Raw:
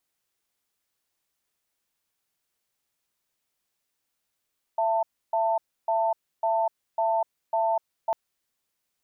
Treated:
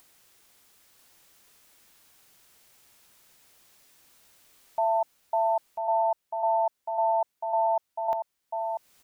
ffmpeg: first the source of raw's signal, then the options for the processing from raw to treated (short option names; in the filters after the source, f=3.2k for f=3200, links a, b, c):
-f lavfi -i "aevalsrc='0.0631*(sin(2*PI*670*t)+sin(2*PI*892*t))*clip(min(mod(t,0.55),0.25-mod(t,0.55))/0.005,0,1)':d=3.35:s=44100"
-filter_complex "[0:a]acompressor=mode=upward:threshold=-44dB:ratio=2.5,asplit=2[a][b];[b]aecho=0:1:993:0.501[c];[a][c]amix=inputs=2:normalize=0"